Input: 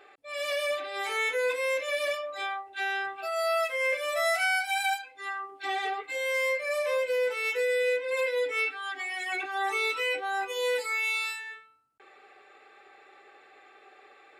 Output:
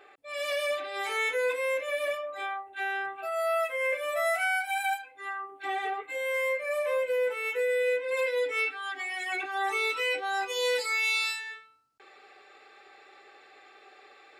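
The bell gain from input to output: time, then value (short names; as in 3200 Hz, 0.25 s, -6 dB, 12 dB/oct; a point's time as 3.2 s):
bell 5000 Hz 1 oct
1.28 s -2 dB
1.83 s -13 dB
7.68 s -13 dB
8.27 s -1.5 dB
9.9 s -1.5 dB
10.38 s +8 dB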